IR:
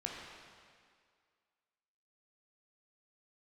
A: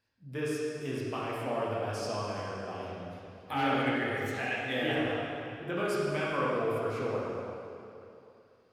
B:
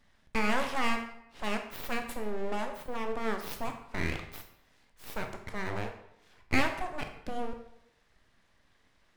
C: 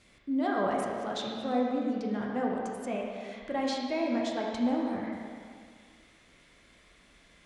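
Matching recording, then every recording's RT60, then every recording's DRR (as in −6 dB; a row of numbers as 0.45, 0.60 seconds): C; 2.8, 0.80, 2.0 seconds; −7.0, 5.0, −2.0 decibels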